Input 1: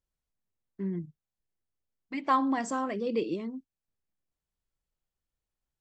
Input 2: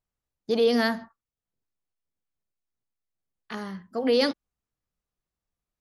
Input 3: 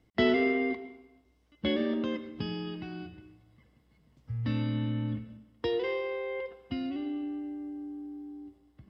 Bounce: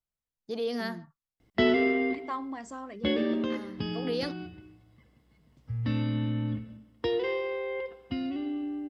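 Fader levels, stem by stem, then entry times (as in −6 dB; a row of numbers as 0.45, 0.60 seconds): −9.5, −10.0, +1.5 decibels; 0.00, 0.00, 1.40 seconds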